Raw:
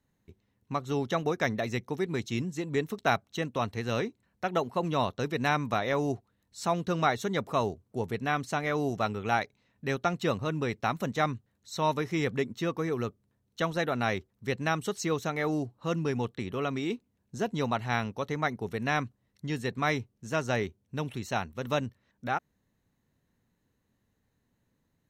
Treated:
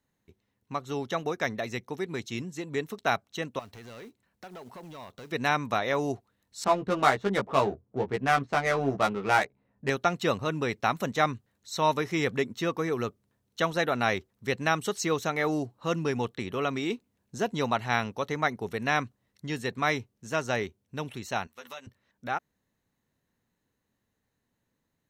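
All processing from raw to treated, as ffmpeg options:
ffmpeg -i in.wav -filter_complex "[0:a]asettb=1/sr,asplit=3[link_01][link_02][link_03];[link_01]atrim=end=3.594[link_04];[link_02]atrim=start=3.59:end=5.32,asetpts=PTS-STARTPTS,afade=type=in:duration=0.004:curve=qsin,afade=type=out:start_time=1.726:duration=0.004:curve=qsin,acompressor=threshold=-37dB:ratio=12:attack=3.2:release=140:knee=1:detection=peak,acrusher=bits=5:mode=log:mix=0:aa=0.000001,asoftclip=type=hard:threshold=-39dB[link_05];[link_03]atrim=start=5.316[link_06];[link_04][link_05]acrossfade=duration=0.004:curve1=hsin:curve2=qsin[link_07];[link_07][link_06]acrossfade=duration=0.004:curve1=qsin:curve2=hsin,asettb=1/sr,asplit=3[link_08][link_09][link_10];[link_08]atrim=end=6.644[link_11];[link_09]atrim=start=6.64:end=9.9,asetpts=PTS-STARTPTS,afade=type=in:duration=0.004:curve=qsin,afade=type=out:start_time=3.256:duration=0.004:curve=qsin,adynamicsmooth=sensitivity=4.5:basefreq=1000,asplit=2[link_12][link_13];[link_13]adelay=15,volume=-3dB[link_14];[link_12][link_14]amix=inputs=2:normalize=0,atrim=end_sample=143766[link_15];[link_10]atrim=start=9.896[link_16];[link_11][link_15]acrossfade=duration=0.004:curve1=hsin:curve2=qsin[link_17];[link_17][link_16]acrossfade=duration=0.004:curve1=qsin:curve2=hsin,asettb=1/sr,asplit=3[link_18][link_19][link_20];[link_18]atrim=end=21.474[link_21];[link_19]atrim=start=21.47:end=21.87,asetpts=PTS-STARTPTS,afade=type=in:duration=0.004:curve=qsin,afade=type=out:start_time=0.396:duration=0.004:curve=qsin,highpass=frequency=1400:poles=1,acompressor=threshold=-41dB:ratio=3:attack=3.2:release=140:knee=1:detection=peak,asplit=2[link_22][link_23];[link_23]adelay=12,volume=-4dB[link_24];[link_22][link_24]amix=inputs=2:normalize=0,atrim=end_sample=17640[link_25];[link_20]atrim=start=21.866[link_26];[link_21][link_25]acrossfade=duration=0.004:curve1=hsin:curve2=qsin[link_27];[link_27][link_26]acrossfade=duration=0.004:curve1=qsin:curve2=hsin,dynaudnorm=framelen=530:gausssize=21:maxgain=4dB,lowshelf=frequency=280:gain=-6.5" out.wav

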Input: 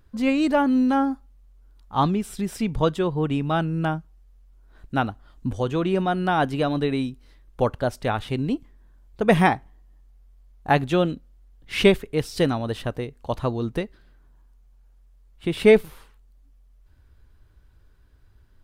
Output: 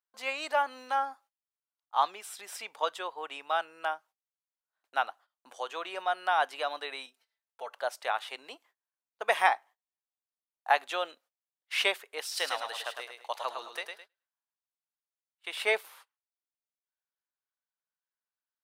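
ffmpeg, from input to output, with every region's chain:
ffmpeg -i in.wav -filter_complex "[0:a]asettb=1/sr,asplit=3[link_01][link_02][link_03];[link_01]atrim=end=7.064[link_04];[link_02]atrim=start=7.06:end=7.73,asetpts=PTS-STARTPTS,afade=type=in:duration=0.004:curve=qsin,afade=type=out:start_time=0.666:duration=0.004:curve=qsin,bandreject=frequency=1100:width=11,aecho=1:1:4.5:0.94,atrim=end_sample=29547,acompressor=threshold=-44dB:ratio=1.5:attack=3.2:release=140:knee=1:detection=peak[link_05];[link_03]atrim=start=7.726[link_06];[link_04][link_05]acrossfade=duration=0.004:curve1=hsin:curve2=qsin[link_07];[link_07][link_06]acrossfade=duration=0.004:curve1=qsin:curve2=hsin,asettb=1/sr,asplit=3[link_08][link_09][link_10];[link_08]atrim=end=12.214[link_11];[link_09]atrim=start=12.21:end=15.52,asetpts=PTS-STARTPTS,afade=type=in:duration=0.004:curve=qsin,afade=type=out:start_time=3.306:duration=0.004:curve=qsin,tiltshelf=frequency=1100:gain=-4,aecho=1:1:106|212|318|424:0.531|0.165|0.051|0.0158,atrim=end_sample=145971[link_12];[link_10]atrim=start=15.516[link_13];[link_11][link_12]acrossfade=duration=0.004:curve1=hsin:curve2=qsin[link_14];[link_14][link_13]acrossfade=duration=0.004:curve1=qsin:curve2=hsin,agate=range=-25dB:threshold=-42dB:ratio=16:detection=peak,highpass=frequency=670:width=0.5412,highpass=frequency=670:width=1.3066,volume=-3dB" out.wav

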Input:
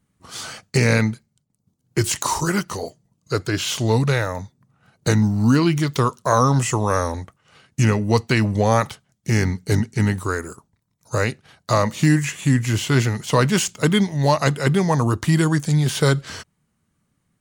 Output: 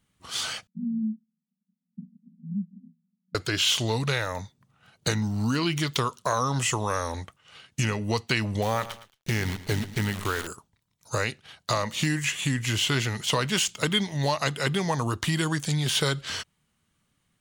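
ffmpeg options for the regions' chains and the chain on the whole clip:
ffmpeg -i in.wav -filter_complex "[0:a]asettb=1/sr,asplit=3[link_01][link_02][link_03];[link_01]atrim=end=0.674[link_04];[link_02]atrim=start=0.67:end=3.35,asetpts=PTS-STARTPTS,afade=type=in:duration=0.004:curve=qsin,afade=type=out:start_time=2.676:duration=0.004:curve=qsin,asuperpass=centerf=200:order=12:qfactor=2.5,aecho=1:1:3.6:0.39,atrim=end_sample=118188[link_05];[link_03]atrim=start=3.346[link_06];[link_04][link_05]acrossfade=duration=0.004:curve1=hsin:curve2=qsin[link_07];[link_07][link_06]acrossfade=duration=0.004:curve1=qsin:curve2=hsin,asettb=1/sr,asplit=3[link_08][link_09][link_10];[link_08]atrim=end=8.624[link_11];[link_09]atrim=start=8.62:end=10.47,asetpts=PTS-STARTPTS,afade=type=in:duration=0.004:curve=qsin,afade=type=out:start_time=1.846:duration=0.004:curve=qsin,aemphasis=mode=reproduction:type=cd,acrusher=bits=6:dc=4:mix=0:aa=0.000001,aecho=1:1:112|224:0.141|0.0297,atrim=end_sample=81585[link_12];[link_10]atrim=start=10.466[link_13];[link_11][link_12]acrossfade=duration=0.004:curve1=hsin:curve2=qsin[link_14];[link_14][link_13]acrossfade=duration=0.004:curve1=qsin:curve2=hsin,equalizer=frequency=180:width=0.33:gain=-5.5,acompressor=threshold=-24dB:ratio=3,equalizer=frequency=3200:width=1.7:gain=7" out.wav

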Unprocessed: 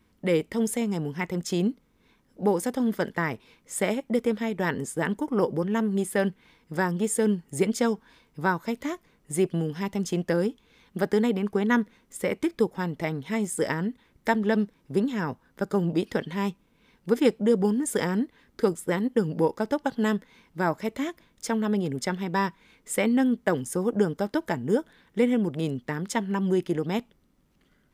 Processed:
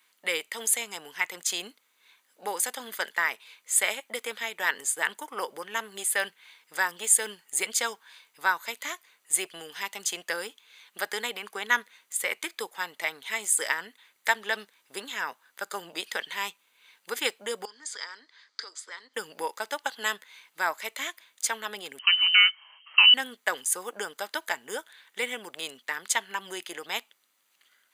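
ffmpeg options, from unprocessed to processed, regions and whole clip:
ffmpeg -i in.wav -filter_complex "[0:a]asettb=1/sr,asplit=3[link_01][link_02][link_03];[link_01]atrim=end=17.654[link_04];[link_02]atrim=start=17.65:end=19.14,asetpts=PTS-STARTPTS,afade=type=in:duration=0.004:curve=qsin,afade=type=out:start_time=1.486:duration=0.004:curve=qsin,acompressor=threshold=-31dB:ratio=5:attack=3.2:release=140:knee=1:detection=peak,highpass=frequency=300:width=0.5412,highpass=frequency=300:width=1.3066,equalizer=frequency=360:width_type=q:width=4:gain=-7,equalizer=frequency=520:width_type=q:width=4:gain=-5,equalizer=frequency=760:width_type=q:width=4:gain=-8,equalizer=frequency=2700:width_type=q:width=4:gain=-10,equalizer=frequency=4800:width_type=q:width=4:gain=10,lowpass=frequency=6200:width=0.5412,lowpass=frequency=6200:width=1.3066[link_05];[link_03]atrim=start=19.136[link_06];[link_04][link_05]acrossfade=duration=0.004:curve1=hsin:curve2=qsin[link_07];[link_07][link_06]acrossfade=duration=0.004:curve1=qsin:curve2=hsin,asettb=1/sr,asplit=3[link_08][link_09][link_10];[link_08]atrim=end=21.994[link_11];[link_09]atrim=start=21.99:end=23.14,asetpts=PTS-STARTPTS,afade=type=in:duration=0.004:curve=qsin,afade=type=out:start_time=1.146:duration=0.004:curve=qsin,bandreject=frequency=1600:width=16,acrusher=bits=5:mode=log:mix=0:aa=0.000001,lowpass=frequency=2700:width_type=q:width=0.5098,lowpass=frequency=2700:width_type=q:width=0.6013,lowpass=frequency=2700:width_type=q:width=0.9,lowpass=frequency=2700:width_type=q:width=2.563,afreqshift=-3200[link_12];[link_10]atrim=start=23.136[link_13];[link_11][link_12]acrossfade=duration=0.004:curve1=hsin:curve2=qsin[link_14];[link_14][link_13]acrossfade=duration=0.004:curve1=qsin:curve2=hsin,highpass=700,tiltshelf=frequency=1200:gain=-8.5,bandreject=frequency=5400:width=6.1,volume=2dB" out.wav

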